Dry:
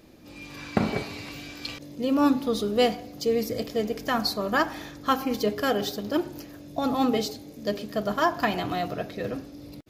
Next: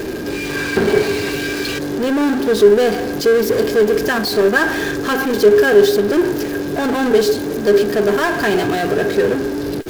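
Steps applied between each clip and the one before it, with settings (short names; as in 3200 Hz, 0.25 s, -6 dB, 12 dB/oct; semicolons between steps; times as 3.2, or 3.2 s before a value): power-law curve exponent 0.35; small resonant body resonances 400/1600 Hz, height 17 dB, ringing for 55 ms; gain -6 dB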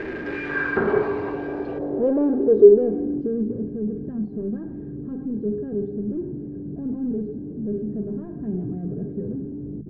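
notches 50/100/150/200 Hz; low-pass sweep 2000 Hz -> 190 Hz, 0.21–3.71; gain -7 dB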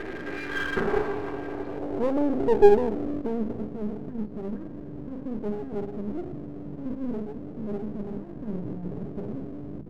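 half-wave gain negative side -12 dB; gain -1.5 dB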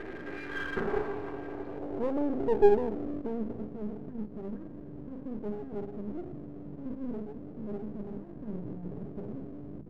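high shelf 3700 Hz -6.5 dB; gain -5.5 dB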